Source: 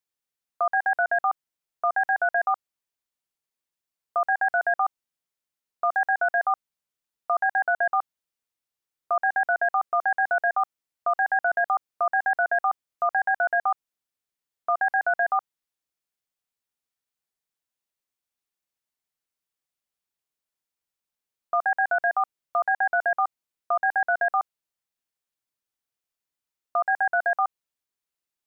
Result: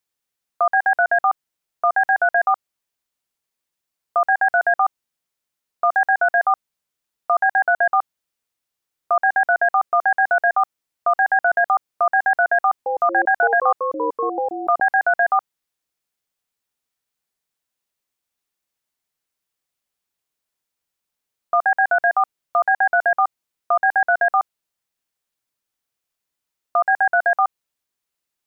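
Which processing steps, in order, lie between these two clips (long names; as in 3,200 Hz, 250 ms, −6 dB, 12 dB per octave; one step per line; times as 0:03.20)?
0:12.59–0:14.80: delay with pitch and tempo change per echo 193 ms, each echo −7 semitones, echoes 2, each echo −6 dB
level +6 dB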